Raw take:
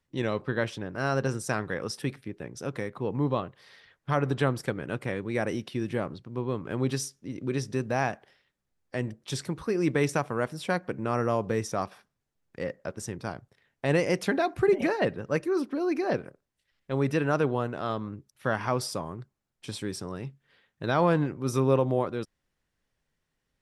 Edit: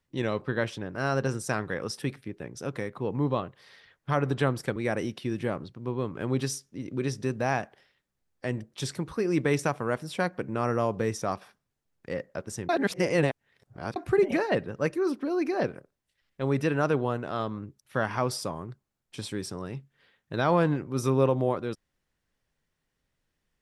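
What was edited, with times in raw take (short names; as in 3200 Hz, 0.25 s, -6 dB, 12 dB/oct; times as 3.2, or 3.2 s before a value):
4.76–5.26 cut
13.19–14.46 reverse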